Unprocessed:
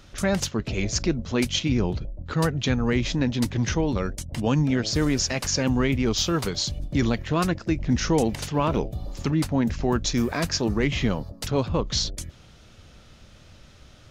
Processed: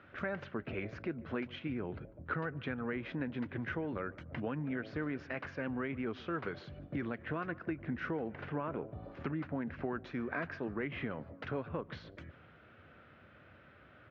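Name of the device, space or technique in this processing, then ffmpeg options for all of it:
bass amplifier: -filter_complex "[0:a]highpass=87,lowshelf=f=320:g=-3.5,asettb=1/sr,asplit=3[s0][s1][s2];[s0]atrim=end=8.174[s3];[s1]atrim=start=8.17:end=9.03,asetpts=PTS-STARTPTS,afade=t=in:d=0.004:c=qsin,afade=t=out:st=0.856:d=0.004:c=qsin,lowpass=f=2300:p=1[s4];[s2]atrim=start=9.026[s5];[s3][s4]acrossfade=d=0.004:c1=hsin:c2=qsin[s6];[s6][s5]acrossfade=d=0.004:c1=qsin:c2=hsin,acompressor=threshold=0.0316:ratio=6,highpass=78,equalizer=f=120:t=q:w=4:g=-4,equalizer=f=190:t=q:w=4:g=-5,equalizer=f=880:t=q:w=4:g=-4,equalizer=f=1500:t=q:w=4:g=6,lowpass=f=2300:w=0.5412,lowpass=f=2300:w=1.3066,asplit=2[s7][s8];[s8]adelay=146,lowpass=f=1700:p=1,volume=0.0944,asplit=2[s9][s10];[s10]adelay=146,lowpass=f=1700:p=1,volume=0.54,asplit=2[s11][s12];[s12]adelay=146,lowpass=f=1700:p=1,volume=0.54,asplit=2[s13][s14];[s14]adelay=146,lowpass=f=1700:p=1,volume=0.54[s15];[s7][s9][s11][s13][s15]amix=inputs=5:normalize=0,volume=0.708"

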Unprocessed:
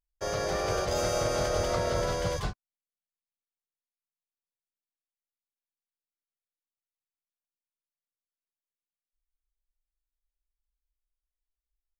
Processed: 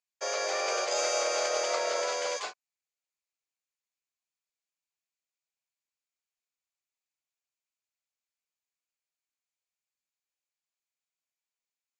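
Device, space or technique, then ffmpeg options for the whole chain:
phone speaker on a table: -af "highpass=f=470:w=0.5412,highpass=f=470:w=1.3066,equalizer=f=2400:t=q:w=4:g=8,equalizer=f=4500:t=q:w=4:g=4,equalizer=f=7000:t=q:w=4:g=9,lowpass=f=8100:w=0.5412,lowpass=f=8100:w=1.3066"

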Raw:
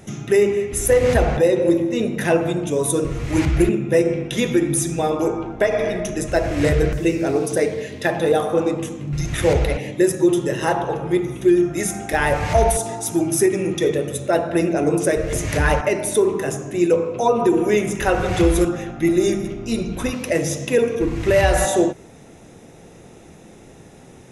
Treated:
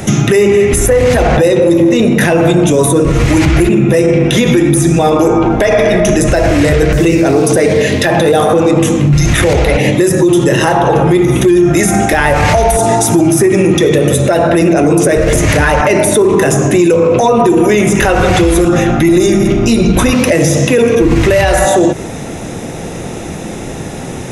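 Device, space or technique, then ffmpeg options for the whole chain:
mastering chain: -filter_complex "[0:a]equalizer=f=420:t=o:w=0.3:g=-2.5,acrossover=split=170|2400[s0][s1][s2];[s0]acompressor=threshold=0.0562:ratio=4[s3];[s1]acompressor=threshold=0.126:ratio=4[s4];[s2]acompressor=threshold=0.0282:ratio=4[s5];[s3][s4][s5]amix=inputs=3:normalize=0,acompressor=threshold=0.0708:ratio=2,asoftclip=type=tanh:threshold=0.224,alimiter=level_in=14.1:limit=0.891:release=50:level=0:latency=1,volume=0.891"

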